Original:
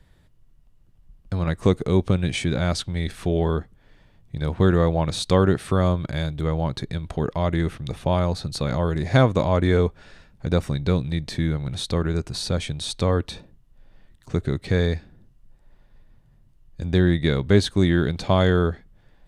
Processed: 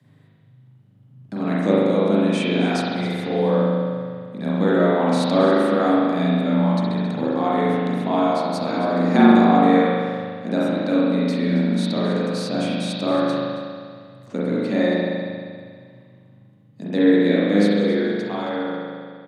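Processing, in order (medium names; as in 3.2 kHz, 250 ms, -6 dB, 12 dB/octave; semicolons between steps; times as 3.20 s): fade out at the end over 2.36 s; frequency shift +100 Hz; on a send: delay 272 ms -16.5 dB; on the sum: spring tank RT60 2 s, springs 39 ms, chirp 30 ms, DRR -8 dB; trim -5 dB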